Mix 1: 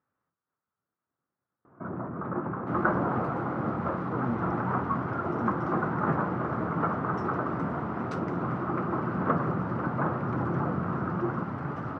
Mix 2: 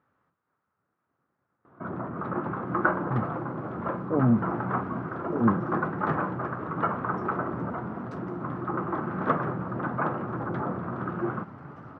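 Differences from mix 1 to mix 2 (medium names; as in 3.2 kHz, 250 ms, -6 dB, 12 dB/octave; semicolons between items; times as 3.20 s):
speech +10.5 dB; first sound: remove distance through air 480 m; second sound -10.0 dB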